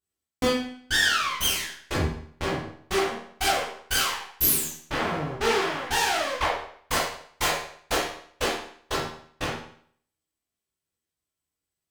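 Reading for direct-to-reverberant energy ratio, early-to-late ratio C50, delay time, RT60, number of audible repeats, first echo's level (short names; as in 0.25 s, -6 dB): -7.5 dB, 2.5 dB, none, 0.60 s, none, none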